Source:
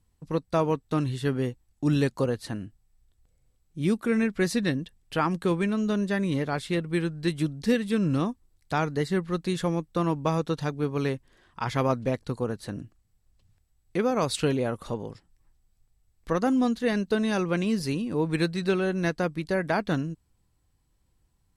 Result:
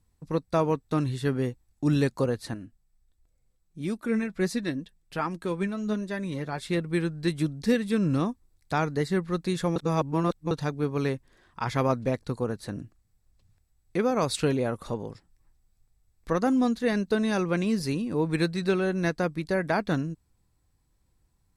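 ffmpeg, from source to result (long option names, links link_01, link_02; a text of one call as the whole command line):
ffmpeg -i in.wav -filter_complex "[0:a]asettb=1/sr,asplit=3[link_01][link_02][link_03];[link_01]atrim=end=2.544[link_04];[link_02]atrim=start=2.54:end=6.62,asetpts=PTS-STARTPTS,afade=type=in:duration=0.004:curve=qsin,afade=type=out:start_time=4.076:duration=0.004:curve=qsin,flanger=delay=3:depth=3.1:regen=48:speed=1.4:shape=sinusoidal[link_05];[link_03]atrim=start=6.616[link_06];[link_04][link_05]acrossfade=duration=0.004:curve1=hsin:curve2=qsin[link_07];[link_07][link_06]acrossfade=duration=0.004:curve1=qsin:curve2=hsin,asplit=3[link_08][link_09][link_10];[link_08]atrim=end=9.762[link_11];[link_09]atrim=start=9.758:end=10.512,asetpts=PTS-STARTPTS,areverse[link_12];[link_10]atrim=start=10.508[link_13];[link_11][link_12]acrossfade=duration=0.004:curve1=hsin:curve2=hsin[link_14];[link_14][link_13]acrossfade=duration=0.004:curve1=hsin:curve2=hsin,equalizer=frequency=3000:width_type=o:width=0.2:gain=-6" out.wav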